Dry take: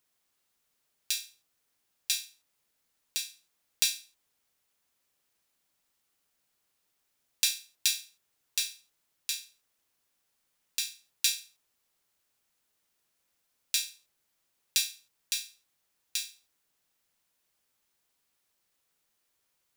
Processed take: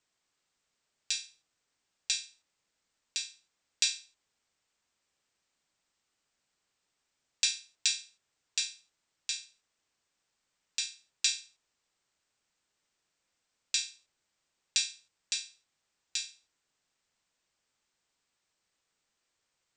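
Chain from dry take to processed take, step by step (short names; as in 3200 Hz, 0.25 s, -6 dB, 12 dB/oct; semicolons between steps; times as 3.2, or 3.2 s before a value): Chebyshev low-pass 8400 Hz, order 8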